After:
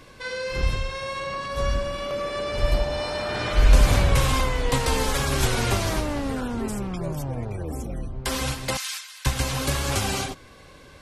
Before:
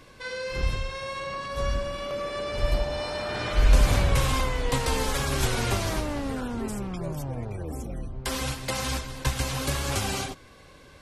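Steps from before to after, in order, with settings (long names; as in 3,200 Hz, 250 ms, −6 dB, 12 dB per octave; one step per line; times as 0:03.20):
0:08.77–0:09.26: Bessel high-pass filter 2,000 Hz, order 4
level +3 dB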